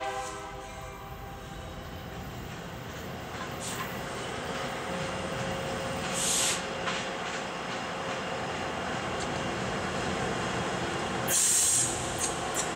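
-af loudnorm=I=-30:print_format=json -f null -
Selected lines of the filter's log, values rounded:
"input_i" : "-29.2",
"input_tp" : "-13.1",
"input_lra" : "11.3",
"input_thresh" : "-39.8",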